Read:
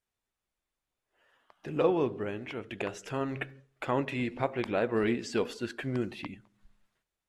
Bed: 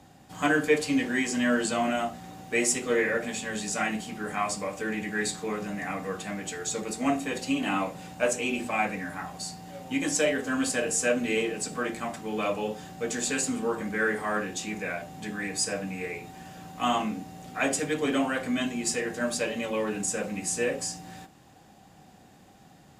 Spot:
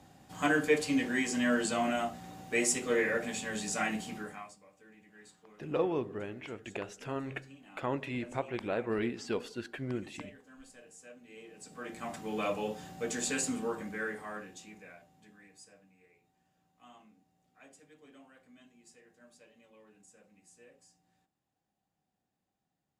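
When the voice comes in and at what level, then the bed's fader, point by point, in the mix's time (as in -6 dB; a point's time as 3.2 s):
3.95 s, -4.5 dB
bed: 4.17 s -4 dB
4.59 s -27.5 dB
11.26 s -27.5 dB
12.15 s -4.5 dB
13.52 s -4.5 dB
15.93 s -31 dB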